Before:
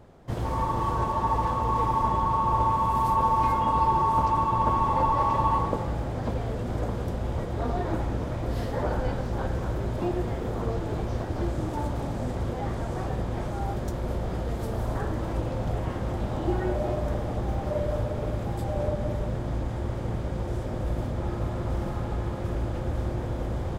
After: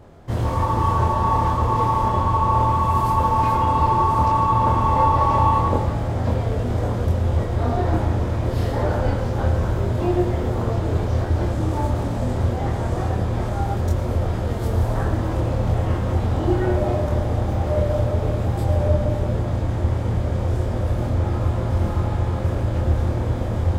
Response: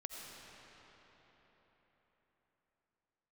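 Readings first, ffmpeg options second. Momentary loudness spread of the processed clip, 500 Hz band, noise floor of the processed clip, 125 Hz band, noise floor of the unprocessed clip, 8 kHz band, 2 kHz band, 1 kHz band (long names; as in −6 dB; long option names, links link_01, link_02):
5 LU, +6.0 dB, −25 dBFS, +9.5 dB, −32 dBFS, +6.0 dB, +6.0 dB, +5.0 dB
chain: -filter_complex "[0:a]equalizer=frequency=86:width=4.3:gain=10.5,asplit=2[link_01][link_02];[1:a]atrim=start_sample=2205,atrim=end_sample=6615,adelay=25[link_03];[link_02][link_03]afir=irnorm=-1:irlink=0,volume=3dB[link_04];[link_01][link_04]amix=inputs=2:normalize=0,volume=3.5dB"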